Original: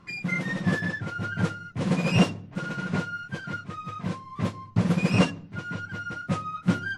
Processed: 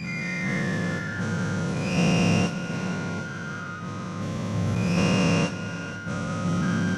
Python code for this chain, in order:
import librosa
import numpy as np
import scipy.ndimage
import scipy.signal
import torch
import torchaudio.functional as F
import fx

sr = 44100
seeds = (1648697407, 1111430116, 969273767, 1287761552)

y = fx.spec_dilate(x, sr, span_ms=480)
y = fx.peak_eq(y, sr, hz=6000.0, db=9.0, octaves=0.3)
y = y + 10.0 ** (-13.5 / 20.0) * np.pad(y, (int(479 * sr / 1000.0), 0))[:len(y)]
y = y * 10.0 ** (-8.5 / 20.0)